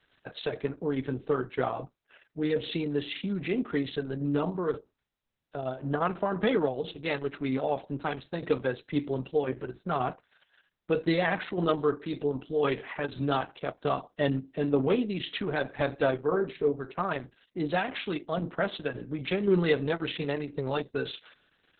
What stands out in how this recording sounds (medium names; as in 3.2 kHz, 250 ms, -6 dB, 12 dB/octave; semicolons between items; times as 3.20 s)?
tremolo saw down 1.9 Hz, depth 40%; Opus